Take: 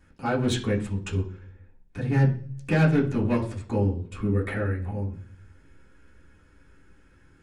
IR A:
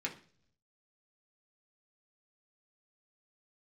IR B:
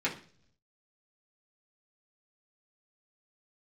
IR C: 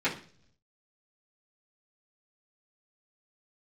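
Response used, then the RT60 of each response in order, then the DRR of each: B; no single decay rate, 0.50 s, 0.50 s; -1.5 dB, -6.5 dB, -11.5 dB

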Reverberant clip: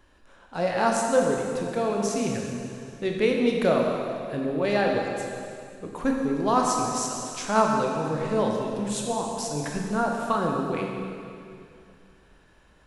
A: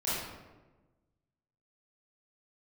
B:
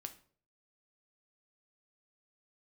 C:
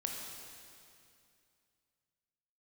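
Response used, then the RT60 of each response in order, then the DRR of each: C; 1.2 s, 0.50 s, 2.5 s; -11.0 dB, 7.0 dB, 0.0 dB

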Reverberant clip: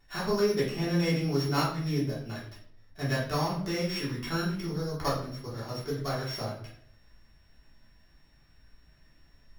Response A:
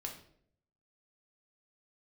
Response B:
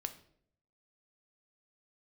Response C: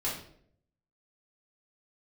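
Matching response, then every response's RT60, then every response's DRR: C; 0.65 s, 0.65 s, 0.65 s; 0.5 dB, 7.5 dB, -8.0 dB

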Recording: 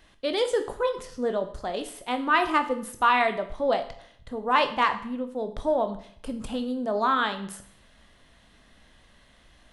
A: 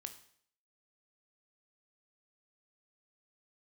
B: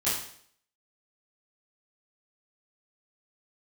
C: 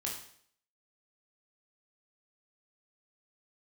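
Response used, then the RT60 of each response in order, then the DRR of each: A; 0.60 s, 0.60 s, 0.60 s; 7.5 dB, -12.5 dB, -2.5 dB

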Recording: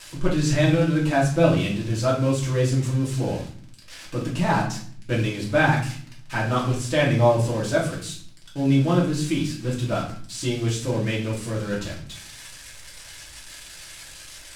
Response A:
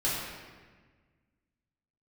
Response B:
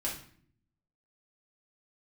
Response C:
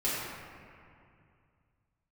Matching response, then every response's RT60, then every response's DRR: B; 1.5 s, 0.55 s, 2.4 s; -9.5 dB, -5.5 dB, -9.5 dB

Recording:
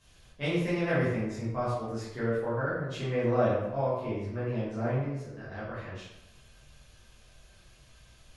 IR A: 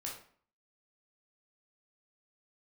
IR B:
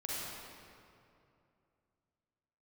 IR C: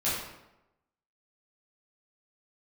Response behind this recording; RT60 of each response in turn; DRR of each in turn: C; 0.50 s, 2.6 s, 0.95 s; -3.0 dB, -7.0 dB, -10.5 dB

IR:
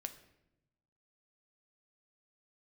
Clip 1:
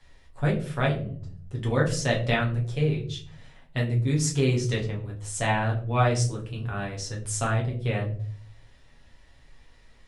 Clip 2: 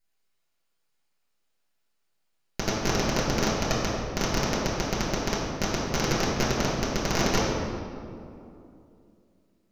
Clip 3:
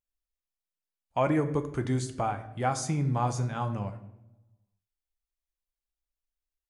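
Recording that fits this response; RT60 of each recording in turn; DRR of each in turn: 3; 0.50 s, 2.7 s, 0.90 s; -3.0 dB, -7.5 dB, 7.5 dB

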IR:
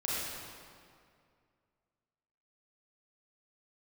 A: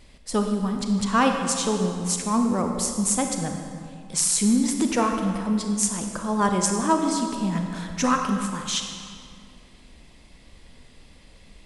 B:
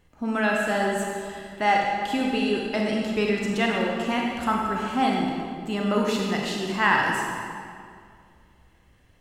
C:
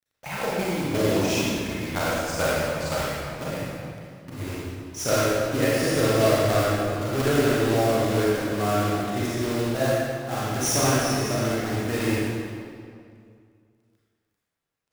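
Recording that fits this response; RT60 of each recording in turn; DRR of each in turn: C; 2.2 s, 2.2 s, 2.2 s; 3.5 dB, -1.5 dB, -7.5 dB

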